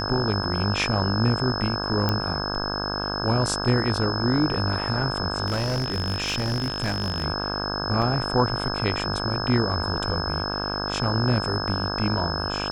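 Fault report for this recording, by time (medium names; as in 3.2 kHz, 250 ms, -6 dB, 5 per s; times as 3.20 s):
buzz 50 Hz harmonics 33 -30 dBFS
whine 5.2 kHz -30 dBFS
2.09 s: pop -9 dBFS
5.46–7.25 s: clipped -21 dBFS
8.02 s: dropout 4.3 ms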